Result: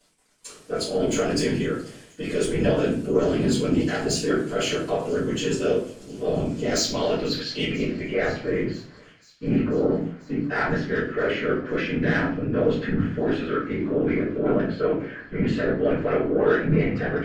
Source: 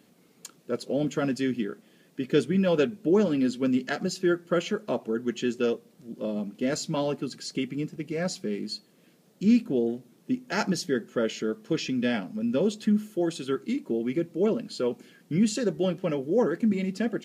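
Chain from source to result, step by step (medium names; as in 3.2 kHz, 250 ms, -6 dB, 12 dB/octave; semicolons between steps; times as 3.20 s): tone controls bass -12 dB, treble -3 dB; peak limiter -23 dBFS, peak gain reduction 10 dB; transient shaper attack -4 dB, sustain +6 dB; small samples zeroed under -56.5 dBFS; low-pass sweep 8.9 kHz -> 1.7 kHz, 6.34–8.32 s; saturation -24 dBFS, distortion -20 dB; whisper effect; on a send: feedback echo behind a high-pass 492 ms, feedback 77%, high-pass 3 kHz, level -22.5 dB; on the sum: simulated room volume 42 m³, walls mixed, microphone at 2 m; trim -2.5 dB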